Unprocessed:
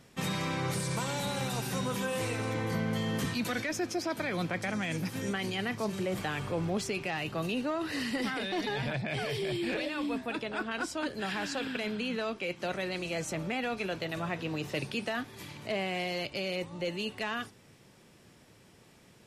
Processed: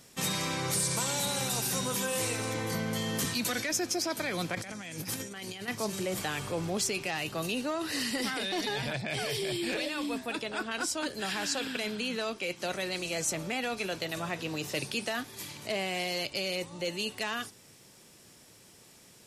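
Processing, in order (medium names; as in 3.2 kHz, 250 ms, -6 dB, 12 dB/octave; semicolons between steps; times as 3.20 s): tone controls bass -3 dB, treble +11 dB; 4.55–5.68 s: compressor with a negative ratio -38 dBFS, ratio -0.5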